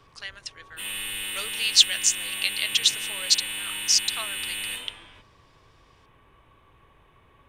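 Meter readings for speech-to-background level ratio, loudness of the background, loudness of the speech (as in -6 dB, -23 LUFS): 8.0 dB, -30.0 LUFS, -22.0 LUFS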